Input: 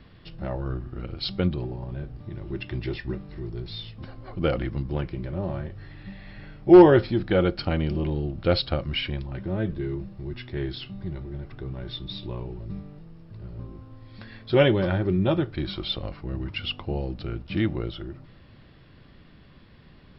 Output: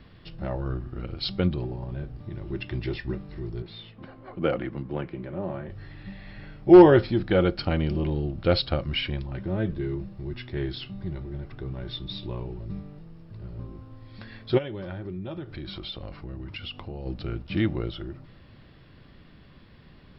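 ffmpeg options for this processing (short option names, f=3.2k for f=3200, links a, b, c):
-filter_complex "[0:a]asettb=1/sr,asplit=3[a][b][c];[a]atrim=end=3.624[d];[b]atrim=start=3.62:end=5.69,asetpts=PTS-STARTPTS,afade=t=in:d=0.004:c=qsin,afade=t=out:st=2.066:d=0.004:c=qsin,acrossover=split=150 3300:gain=0.2 1 0.126[e][f][g];[e][f][g]amix=inputs=3:normalize=0[h];[c]atrim=start=5.686[i];[d][h]acrossfade=d=0.004:c1=hsin:c2=qsin[j];[j][i]acrossfade=d=0.004:c1=qsin:c2=hsin,asplit=3[k][l][m];[k]afade=t=out:st=14.57:d=0.02[n];[l]acompressor=threshold=-34dB:ratio=4:attack=3.2:release=140:knee=1:detection=peak,afade=t=in:st=14.57:d=0.02,afade=t=out:st=17.05:d=0.02[o];[m]afade=t=in:st=17.05:d=0.02[p];[n][o][p]amix=inputs=3:normalize=0"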